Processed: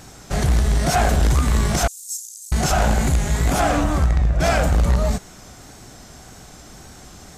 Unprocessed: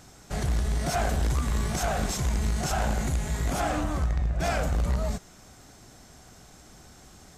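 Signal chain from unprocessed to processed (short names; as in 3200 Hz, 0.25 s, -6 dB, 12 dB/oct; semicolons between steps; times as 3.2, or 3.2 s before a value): 1.87–2.52 inverse Chebyshev high-pass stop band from 1600 Hz, stop band 70 dB; wow and flutter 53 cents; gain +9 dB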